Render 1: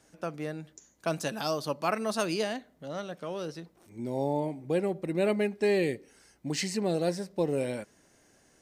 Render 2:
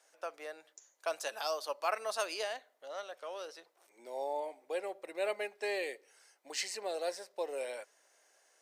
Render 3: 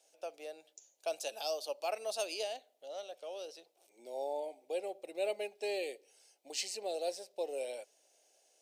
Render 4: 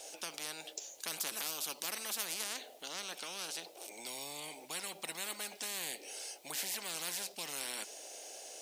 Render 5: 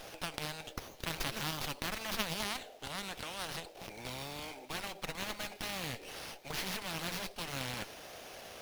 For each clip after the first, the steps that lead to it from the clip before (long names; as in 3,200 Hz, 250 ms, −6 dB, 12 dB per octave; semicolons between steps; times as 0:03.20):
high-pass filter 520 Hz 24 dB per octave; level −3.5 dB
flat-topped bell 1,400 Hz −14 dB 1.3 octaves
every bin compressed towards the loudest bin 10 to 1; level +4.5 dB
windowed peak hold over 5 samples; level +2.5 dB